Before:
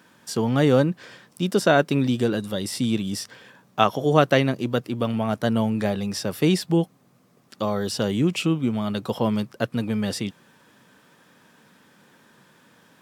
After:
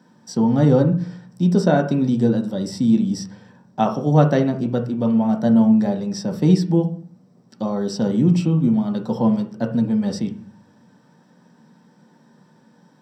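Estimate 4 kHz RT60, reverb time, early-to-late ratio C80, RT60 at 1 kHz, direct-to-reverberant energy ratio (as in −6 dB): 0.40 s, 0.45 s, 16.0 dB, 0.40 s, 3.0 dB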